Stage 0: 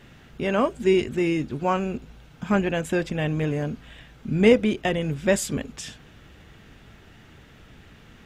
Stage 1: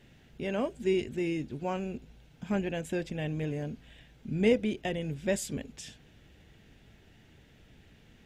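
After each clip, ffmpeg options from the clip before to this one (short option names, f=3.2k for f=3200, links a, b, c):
-af "equalizer=f=1.2k:w=2.2:g=-9.5,volume=-8dB"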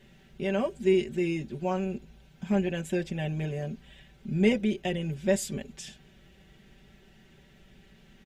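-af "aecho=1:1:5.2:0.75"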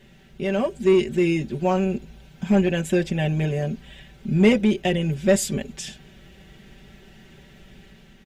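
-filter_complex "[0:a]asplit=2[a][b];[b]asoftclip=type=hard:threshold=-22.5dB,volume=-3dB[c];[a][c]amix=inputs=2:normalize=0,dynaudnorm=f=560:g=3:m=4dB"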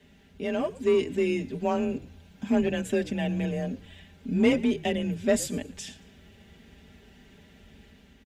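-filter_complex "[0:a]afreqshift=29,asplit=4[a][b][c][d];[b]adelay=114,afreqshift=-83,volume=-20.5dB[e];[c]adelay=228,afreqshift=-166,volume=-30.1dB[f];[d]adelay=342,afreqshift=-249,volume=-39.8dB[g];[a][e][f][g]amix=inputs=4:normalize=0,volume=-5.5dB"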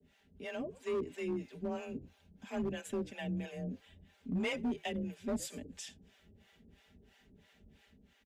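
-filter_complex "[0:a]acrossover=split=540[a][b];[a]aeval=exprs='val(0)*(1-1/2+1/2*cos(2*PI*3*n/s))':c=same[c];[b]aeval=exprs='val(0)*(1-1/2-1/2*cos(2*PI*3*n/s))':c=same[d];[c][d]amix=inputs=2:normalize=0,acrossover=split=150|860|4900[e][f][g][h];[f]volume=26dB,asoftclip=hard,volume=-26dB[i];[e][i][g][h]amix=inputs=4:normalize=0,volume=-6dB"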